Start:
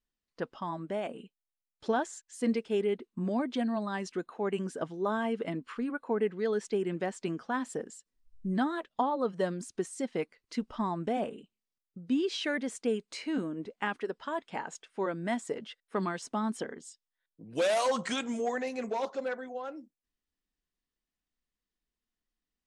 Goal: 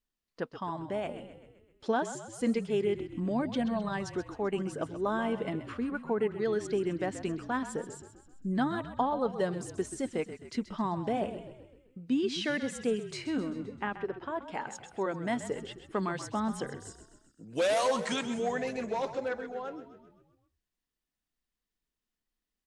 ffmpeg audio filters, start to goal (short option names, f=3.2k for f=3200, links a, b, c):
-filter_complex "[0:a]asettb=1/sr,asplit=3[a][b][c];[a]atrim=end=13.554[d];[b]atrim=start=13.55:end=14.43,asetpts=PTS-STARTPTS,afade=t=in:d=0.004:c=qsin,afade=t=out:st=0.876:d=0.004:c=qsin,lowpass=f=1.6k:p=1[e];[c]atrim=start=14.426[f];[d][e]acrossfade=d=0.004:c1=hsin:c2=qsin[g];[g][f]acrossfade=d=0.004:c1=qsin:c2=hsin,asplit=7[h][i][j][k][l][m][n];[i]adelay=130,afreqshift=-39,volume=-12dB[o];[j]adelay=260,afreqshift=-78,volume=-17.2dB[p];[k]adelay=390,afreqshift=-117,volume=-22.4dB[q];[l]adelay=520,afreqshift=-156,volume=-27.6dB[r];[m]adelay=650,afreqshift=-195,volume=-32.8dB[s];[n]adelay=780,afreqshift=-234,volume=-38dB[t];[h][o][p][q][r][s][t]amix=inputs=7:normalize=0"